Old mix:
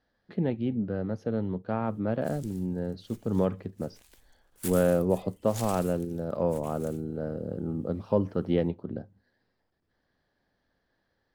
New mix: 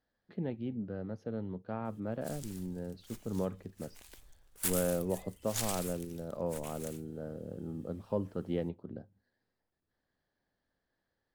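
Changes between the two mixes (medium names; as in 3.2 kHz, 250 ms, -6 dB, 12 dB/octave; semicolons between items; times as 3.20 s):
speech -8.5 dB; background +4.0 dB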